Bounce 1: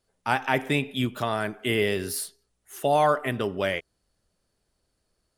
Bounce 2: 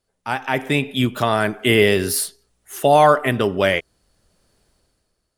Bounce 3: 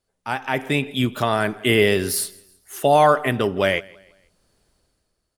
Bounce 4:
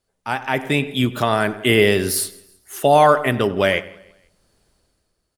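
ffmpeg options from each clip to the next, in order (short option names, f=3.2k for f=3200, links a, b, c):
-af "dynaudnorm=f=100:g=13:m=14dB"
-af "aecho=1:1:164|328|492:0.0631|0.0259|0.0106,volume=-2dB"
-filter_complex "[0:a]asplit=2[a][b];[b]adelay=97,lowpass=f=2k:p=1,volume=-16dB,asplit=2[c][d];[d]adelay=97,lowpass=f=2k:p=1,volume=0.43,asplit=2[e][f];[f]adelay=97,lowpass=f=2k:p=1,volume=0.43,asplit=2[g][h];[h]adelay=97,lowpass=f=2k:p=1,volume=0.43[i];[a][c][e][g][i]amix=inputs=5:normalize=0,volume=2dB"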